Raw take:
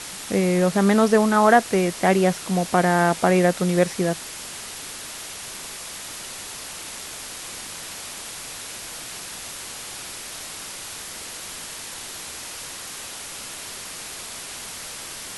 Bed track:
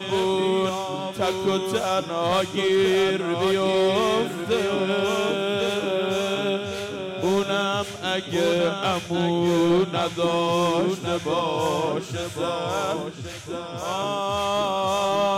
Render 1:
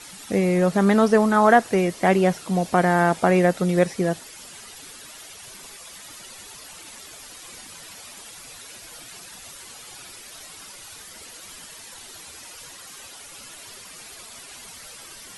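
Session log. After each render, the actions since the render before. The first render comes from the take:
broadband denoise 11 dB, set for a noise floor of −36 dBFS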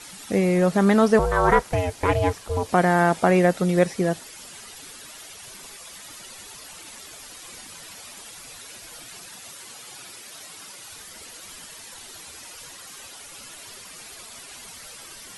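0:01.19–0:02.69: ring modulation 270 Hz
0:09.32–0:10.89: high-pass filter 100 Hz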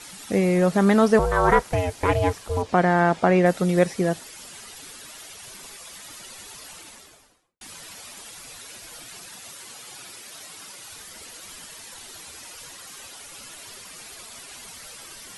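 0:02.62–0:03.46: high-frequency loss of the air 83 metres
0:06.70–0:07.61: fade out and dull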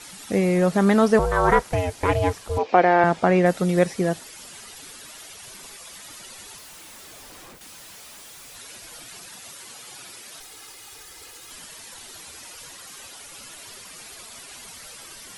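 0:02.58–0:03.04: loudspeaker in its box 290–5,600 Hz, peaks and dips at 330 Hz +4 dB, 490 Hz +6 dB, 770 Hz +6 dB, 2,400 Hz +9 dB
0:06.58–0:08.55: sign of each sample alone
0:10.40–0:11.51: lower of the sound and its delayed copy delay 2.4 ms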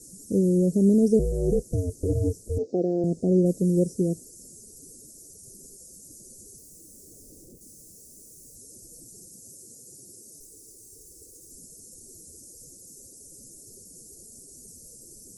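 inverse Chebyshev band-stop filter 910–3,300 Hz, stop band 50 dB
high-shelf EQ 9,400 Hz −6 dB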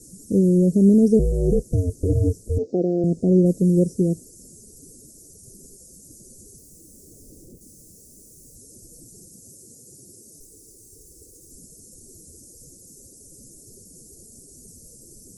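low-shelf EQ 370 Hz +6.5 dB
notch filter 870 Hz, Q 12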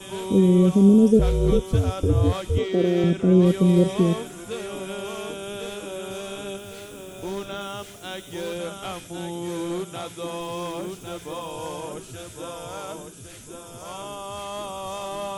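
mix in bed track −9.5 dB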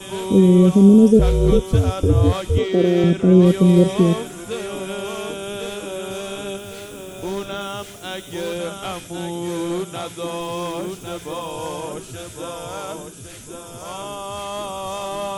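level +4.5 dB
brickwall limiter −3 dBFS, peak gain reduction 1 dB

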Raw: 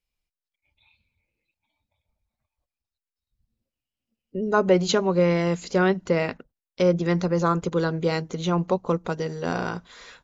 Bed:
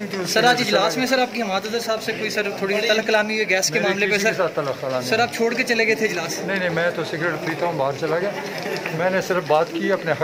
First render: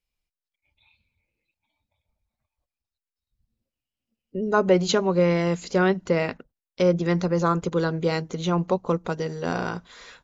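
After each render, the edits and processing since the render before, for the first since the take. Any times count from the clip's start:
no processing that can be heard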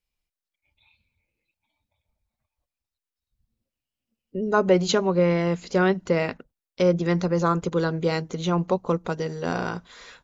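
0:05.10–0:05.71: high-frequency loss of the air 94 metres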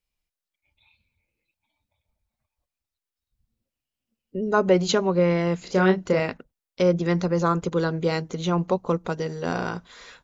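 0:05.58–0:06.20: double-tracking delay 32 ms −6 dB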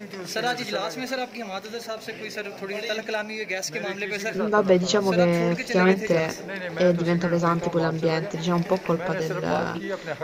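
mix in bed −10 dB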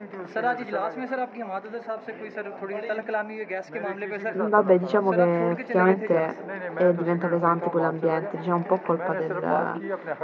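Chebyshev band-pass filter 220–1,500 Hz, order 2
parametric band 850 Hz +4.5 dB 0.82 octaves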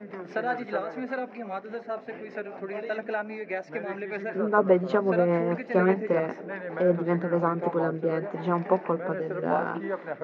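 rotating-speaker cabinet horn 5 Hz, later 0.85 Hz, at 0:07.08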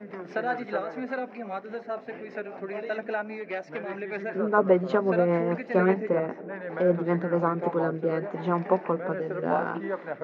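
0:03.40–0:03.92: saturating transformer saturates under 760 Hz
0:06.09–0:06.61: low-pass filter 1,500 Hz 6 dB per octave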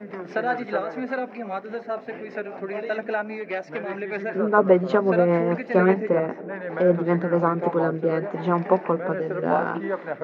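level +4 dB

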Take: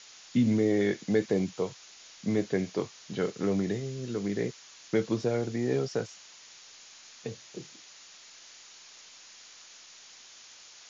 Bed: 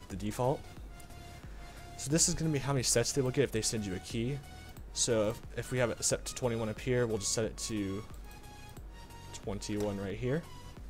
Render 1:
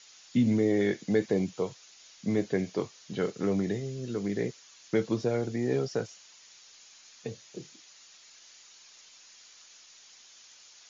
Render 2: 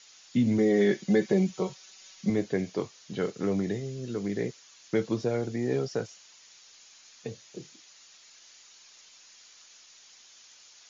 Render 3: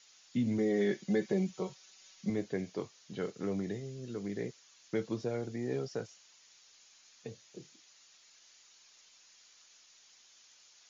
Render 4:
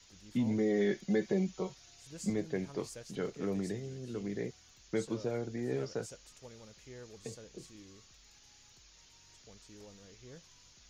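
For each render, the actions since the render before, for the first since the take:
broadband denoise 6 dB, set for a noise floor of −52 dBFS
0:00.58–0:02.30: comb filter 5.3 ms, depth 90%
level −7 dB
mix in bed −19.5 dB

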